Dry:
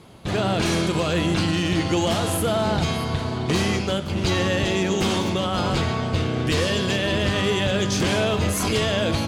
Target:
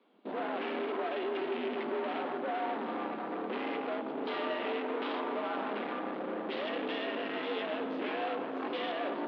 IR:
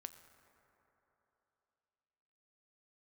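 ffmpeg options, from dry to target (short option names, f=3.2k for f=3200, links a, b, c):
-filter_complex "[0:a]afwtdn=0.0398,asettb=1/sr,asplit=3[a][b][c];[a]atrim=end=0.814[d];[b]atrim=start=0.81:end=1.54,asetpts=PTS-STARTPTS,afade=t=in:d=0.004:c=qsin,afade=t=out:st=0.726:d=0.004:c=qsin,aecho=1:1:3.3:0.68,atrim=end_sample=32193[e];[c]atrim=start=1.536[f];[d][e]acrossfade=d=0.004:c1=hsin:c2=qsin[g];[g][f]acrossfade=d=0.004:c1=qsin:c2=hsin,asettb=1/sr,asplit=3[h][i][j];[h]atrim=end=3.754[k];[i]atrim=start=3.75:end=5.56,asetpts=PTS-STARTPTS,afade=t=in:d=0.004:c=qsin,afade=t=out:st=1.806:d=0.004:c=qsin,equalizer=f=1k:t=o:w=1.5:g=6.5[l];[j]atrim=start=5.556[m];[k][l]acrossfade=d=0.004:c1=hsin:c2=qsin[n];[n][m]acrossfade=d=0.004:c1=qsin:c2=hsin,alimiter=limit=-18.5dB:level=0:latency=1,asoftclip=type=hard:threshold=-30dB[o];[1:a]atrim=start_sample=2205,asetrate=24696,aresample=44100[p];[o][p]afir=irnorm=-1:irlink=0,highpass=f=180:t=q:w=0.5412,highpass=f=180:t=q:w=1.307,lowpass=f=3.6k:t=q:w=0.5176,lowpass=f=3.6k:t=q:w=0.7071,lowpass=f=3.6k:t=q:w=1.932,afreqshift=69"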